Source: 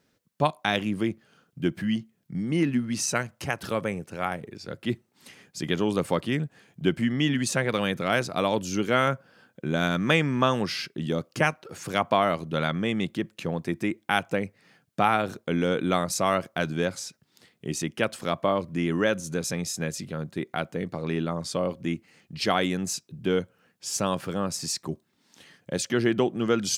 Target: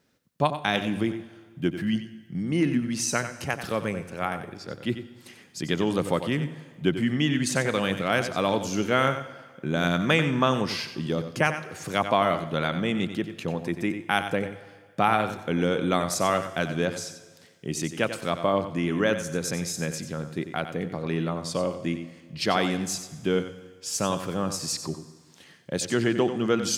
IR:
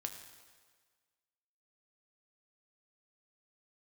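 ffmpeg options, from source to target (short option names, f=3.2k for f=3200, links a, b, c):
-filter_complex "[0:a]asplit=2[a][b];[1:a]atrim=start_sample=2205,adelay=92[c];[b][c]afir=irnorm=-1:irlink=0,volume=-7.5dB[d];[a][d]amix=inputs=2:normalize=0"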